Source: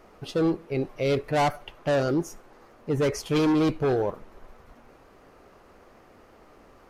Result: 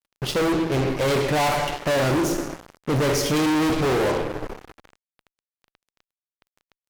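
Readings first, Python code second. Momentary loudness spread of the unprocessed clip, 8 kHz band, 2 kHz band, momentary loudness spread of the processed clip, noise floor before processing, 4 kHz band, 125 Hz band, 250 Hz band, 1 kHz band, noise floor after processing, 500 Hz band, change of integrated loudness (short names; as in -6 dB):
9 LU, +11.0 dB, +8.0 dB, 9 LU, -55 dBFS, +9.0 dB, +4.5 dB, +3.0 dB, +5.5 dB, under -85 dBFS, +3.0 dB, +3.5 dB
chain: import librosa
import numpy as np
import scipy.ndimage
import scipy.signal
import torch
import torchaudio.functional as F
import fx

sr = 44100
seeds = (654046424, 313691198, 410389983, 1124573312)

y = fx.rev_double_slope(x, sr, seeds[0], early_s=0.86, late_s=3.0, knee_db=-19, drr_db=4.0)
y = fx.fuzz(y, sr, gain_db=35.0, gate_db=-42.0)
y = y * 10.0 ** (-6.0 / 20.0)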